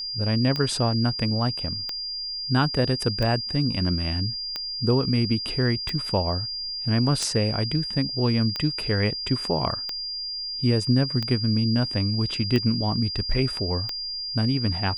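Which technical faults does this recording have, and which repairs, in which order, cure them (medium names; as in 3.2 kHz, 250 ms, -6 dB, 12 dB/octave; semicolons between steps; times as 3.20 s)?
tick 45 rpm -14 dBFS
whine 4.8 kHz -29 dBFS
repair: de-click; band-stop 4.8 kHz, Q 30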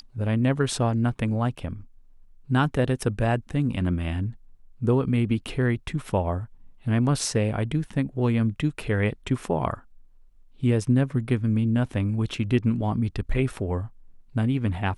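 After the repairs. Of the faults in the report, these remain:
nothing left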